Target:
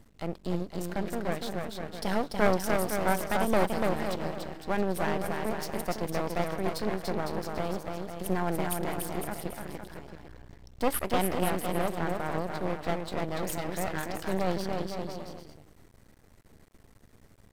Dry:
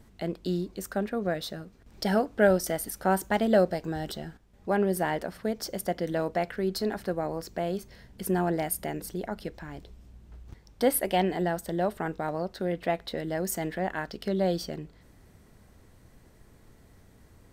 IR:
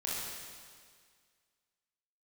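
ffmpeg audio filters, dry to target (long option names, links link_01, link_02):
-af "aecho=1:1:290|507.5|670.6|793|884.7:0.631|0.398|0.251|0.158|0.1,aeval=exprs='max(val(0),0)':channel_layout=same"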